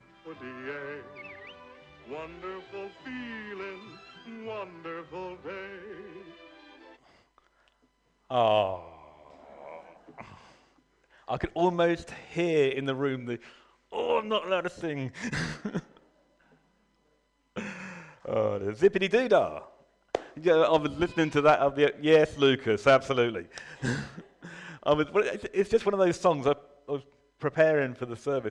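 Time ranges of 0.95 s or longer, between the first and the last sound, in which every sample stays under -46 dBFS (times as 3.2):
15.97–17.56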